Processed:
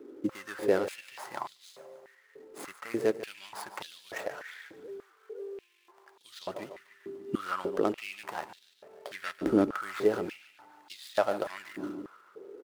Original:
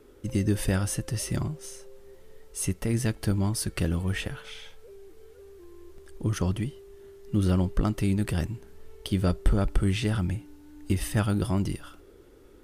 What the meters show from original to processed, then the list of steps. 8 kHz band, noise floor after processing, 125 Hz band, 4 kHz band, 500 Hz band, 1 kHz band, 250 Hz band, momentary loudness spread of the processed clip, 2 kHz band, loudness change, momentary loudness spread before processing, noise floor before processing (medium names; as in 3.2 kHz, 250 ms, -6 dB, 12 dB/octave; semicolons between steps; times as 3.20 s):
-14.5 dB, -64 dBFS, -23.0 dB, -6.5 dB, +3.5 dB, +3.0 dB, -6.0 dB, 19 LU, -1.0 dB, -5.5 dB, 14 LU, -53 dBFS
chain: median filter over 15 samples; feedback delay 146 ms, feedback 58%, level -14 dB; step-sequenced high-pass 3.4 Hz 300–3700 Hz